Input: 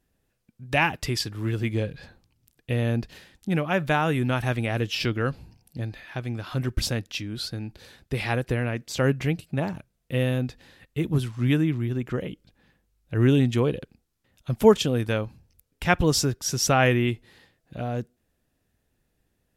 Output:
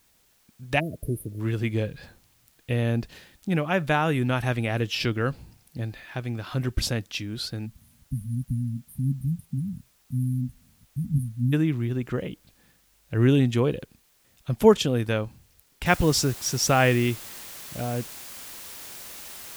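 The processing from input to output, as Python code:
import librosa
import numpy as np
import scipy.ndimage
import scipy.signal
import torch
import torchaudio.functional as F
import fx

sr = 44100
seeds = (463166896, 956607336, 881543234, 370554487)

y = fx.spec_erase(x, sr, start_s=0.79, length_s=0.61, low_hz=680.0, high_hz=9100.0)
y = fx.brickwall_bandstop(y, sr, low_hz=270.0, high_hz=8700.0, at=(7.65, 11.52), fade=0.02)
y = fx.noise_floor_step(y, sr, seeds[0], at_s=15.86, before_db=-64, after_db=-41, tilt_db=0.0)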